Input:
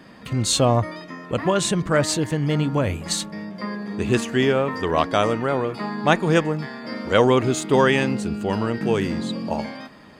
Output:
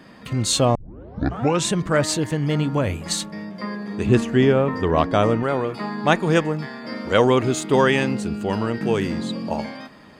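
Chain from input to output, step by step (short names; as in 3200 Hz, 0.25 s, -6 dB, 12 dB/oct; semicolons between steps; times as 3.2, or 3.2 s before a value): 0.75 tape start 0.92 s; 4.06–5.43 tilt -2 dB/oct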